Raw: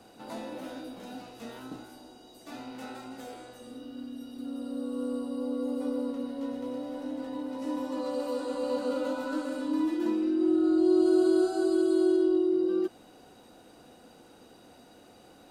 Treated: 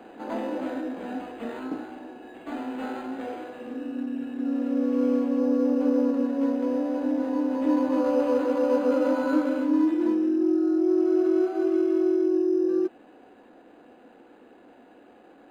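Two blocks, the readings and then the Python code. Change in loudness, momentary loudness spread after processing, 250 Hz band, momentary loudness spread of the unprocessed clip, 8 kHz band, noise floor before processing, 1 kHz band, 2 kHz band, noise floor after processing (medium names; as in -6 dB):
+3.5 dB, 13 LU, +5.0 dB, 20 LU, no reading, -55 dBFS, +6.0 dB, +5.0 dB, -53 dBFS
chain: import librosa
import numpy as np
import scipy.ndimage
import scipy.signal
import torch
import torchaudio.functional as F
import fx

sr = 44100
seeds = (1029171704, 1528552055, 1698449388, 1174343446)

y = fx.low_shelf_res(x, sr, hz=180.0, db=-13.0, q=1.5)
y = fx.rider(y, sr, range_db=5, speed_s=0.5)
y = np.interp(np.arange(len(y)), np.arange(len(y))[::8], y[::8])
y = F.gain(torch.from_numpy(y), 3.0).numpy()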